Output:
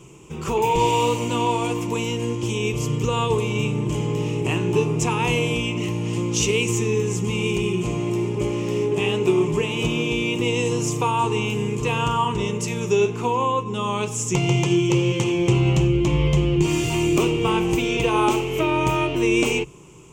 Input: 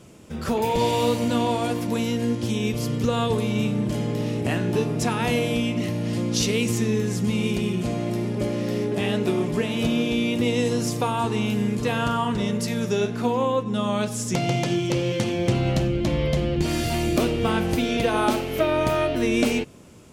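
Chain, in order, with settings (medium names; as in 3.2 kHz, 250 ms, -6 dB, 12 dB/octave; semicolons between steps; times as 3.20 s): rippled EQ curve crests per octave 0.71, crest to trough 13 dB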